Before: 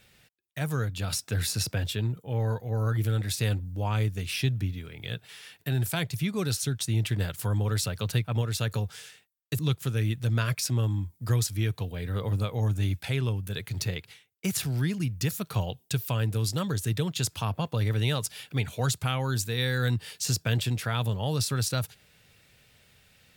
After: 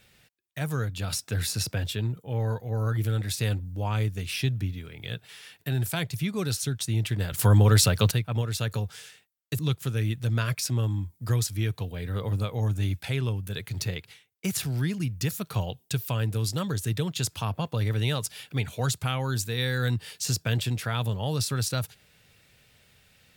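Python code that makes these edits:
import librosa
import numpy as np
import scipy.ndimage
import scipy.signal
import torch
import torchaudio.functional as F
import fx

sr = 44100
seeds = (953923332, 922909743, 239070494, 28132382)

y = fx.edit(x, sr, fx.clip_gain(start_s=7.32, length_s=0.79, db=9.0), tone=tone)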